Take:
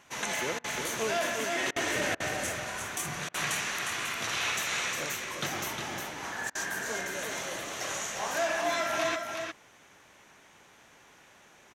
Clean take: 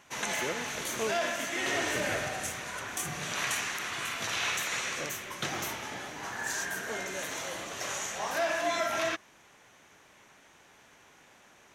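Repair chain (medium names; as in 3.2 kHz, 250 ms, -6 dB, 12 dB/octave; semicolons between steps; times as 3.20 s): interpolate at 0.59/1.71/2.15/3.29/6.50 s, 50 ms; inverse comb 357 ms -5.5 dB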